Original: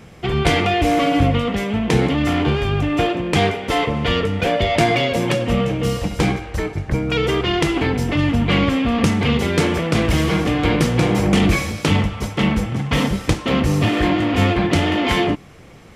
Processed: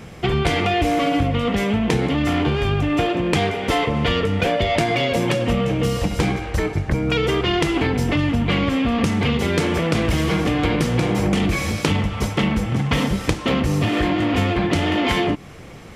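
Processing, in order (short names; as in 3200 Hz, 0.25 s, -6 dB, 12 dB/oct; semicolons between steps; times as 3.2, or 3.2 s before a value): compressor, threshold -20 dBFS, peak gain reduction 9.5 dB; gain +4 dB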